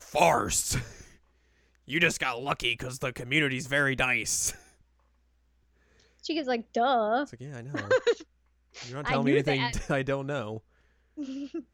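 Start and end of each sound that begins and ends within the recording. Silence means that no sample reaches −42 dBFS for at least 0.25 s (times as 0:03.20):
0:01.88–0:04.57
0:06.24–0:08.22
0:08.74–0:10.59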